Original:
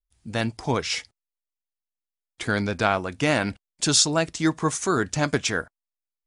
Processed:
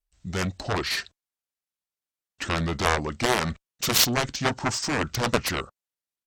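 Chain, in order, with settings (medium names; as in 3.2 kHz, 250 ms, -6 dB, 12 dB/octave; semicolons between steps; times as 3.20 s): Chebyshev shaper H 3 -29 dB, 7 -10 dB, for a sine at -5.5 dBFS; pitch shift -3.5 st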